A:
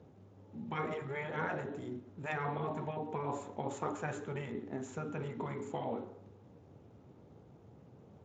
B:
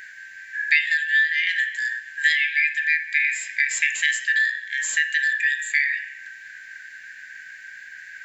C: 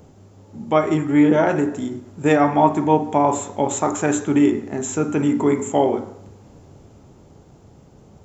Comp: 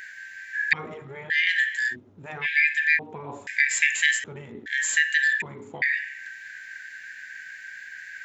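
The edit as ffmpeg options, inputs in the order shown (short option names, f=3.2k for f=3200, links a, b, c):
-filter_complex "[0:a]asplit=5[a][b][c][d][e];[1:a]asplit=6[f][g][h][i][j][k];[f]atrim=end=0.732[l];[a]atrim=start=0.728:end=1.302[m];[g]atrim=start=1.298:end=1.96[n];[b]atrim=start=1.9:end=2.47[o];[h]atrim=start=2.41:end=2.992[p];[c]atrim=start=2.988:end=3.472[q];[i]atrim=start=3.468:end=4.242[r];[d]atrim=start=4.238:end=4.662[s];[j]atrim=start=4.658:end=5.422[t];[e]atrim=start=5.418:end=5.822[u];[k]atrim=start=5.818[v];[l][m]acrossfade=d=0.004:c1=hsin:c2=hsin[w];[w][n]acrossfade=d=0.004:c1=hsin:c2=hsin[x];[x][o]acrossfade=d=0.06:c1=tri:c2=tri[y];[y][p]acrossfade=d=0.06:c1=tri:c2=tri[z];[z][q]acrossfade=d=0.004:c1=hsin:c2=hsin[aa];[aa][r]acrossfade=d=0.004:c1=hsin:c2=hsin[ab];[ab][s]acrossfade=d=0.004:c1=hsin:c2=hsin[ac];[ac][t]acrossfade=d=0.004:c1=hsin:c2=hsin[ad];[ad][u]acrossfade=d=0.004:c1=hsin:c2=hsin[ae];[ae][v]acrossfade=d=0.004:c1=hsin:c2=hsin"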